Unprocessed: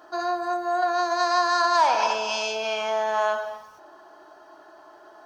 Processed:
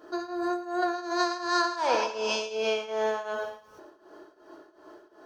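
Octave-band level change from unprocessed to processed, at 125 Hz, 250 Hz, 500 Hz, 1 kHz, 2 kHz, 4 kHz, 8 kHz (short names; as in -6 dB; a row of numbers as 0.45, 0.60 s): n/a, +4.0 dB, -3.0 dB, -8.0 dB, -4.5 dB, -4.0 dB, -4.0 dB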